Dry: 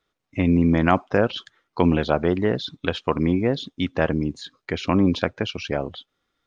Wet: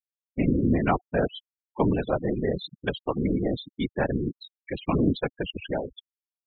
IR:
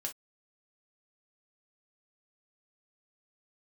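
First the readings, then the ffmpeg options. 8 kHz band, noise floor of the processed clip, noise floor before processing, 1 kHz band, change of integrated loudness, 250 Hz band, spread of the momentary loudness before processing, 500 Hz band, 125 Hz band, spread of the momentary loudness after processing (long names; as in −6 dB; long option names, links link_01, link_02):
can't be measured, below −85 dBFS, −80 dBFS, −5.0 dB, −5.0 dB, −5.0 dB, 12 LU, −4.5 dB, −4.5 dB, 11 LU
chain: -af "adynamicequalizer=threshold=0.0224:dfrequency=1100:dqfactor=0.82:tfrequency=1100:tqfactor=0.82:attack=5:release=100:ratio=0.375:range=2:mode=cutabove:tftype=bell,afftfilt=real='hypot(re,im)*cos(2*PI*random(0))':imag='hypot(re,im)*sin(2*PI*random(1))':win_size=512:overlap=0.75,afftfilt=real='re*gte(hypot(re,im),0.0355)':imag='im*gte(hypot(re,im),0.0355)':win_size=1024:overlap=0.75,volume=2dB"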